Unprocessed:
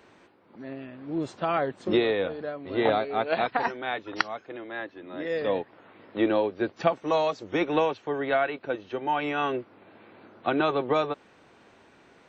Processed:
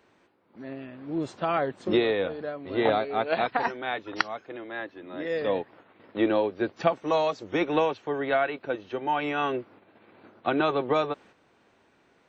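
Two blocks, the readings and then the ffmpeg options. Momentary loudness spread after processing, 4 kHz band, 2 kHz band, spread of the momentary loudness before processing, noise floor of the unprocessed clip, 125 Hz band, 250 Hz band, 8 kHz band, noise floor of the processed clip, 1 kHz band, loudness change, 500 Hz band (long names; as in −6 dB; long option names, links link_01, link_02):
13 LU, 0.0 dB, 0.0 dB, 13 LU, −57 dBFS, 0.0 dB, 0.0 dB, can't be measured, −64 dBFS, 0.0 dB, 0.0 dB, 0.0 dB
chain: -af "agate=range=-7dB:threshold=-51dB:ratio=16:detection=peak"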